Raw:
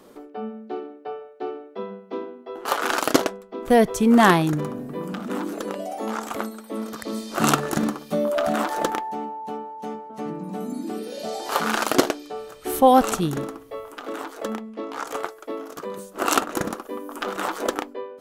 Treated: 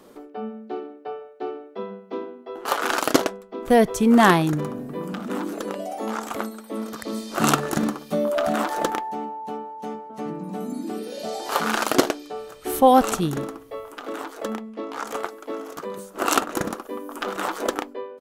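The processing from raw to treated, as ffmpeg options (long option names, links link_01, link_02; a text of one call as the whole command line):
ffmpeg -i in.wav -filter_complex "[0:a]asplit=2[link_01][link_02];[link_02]afade=type=in:start_time=14.48:duration=0.01,afade=type=out:start_time=15.38:duration=0.01,aecho=0:1:540|1080|1620:0.16788|0.0419701|0.0104925[link_03];[link_01][link_03]amix=inputs=2:normalize=0" out.wav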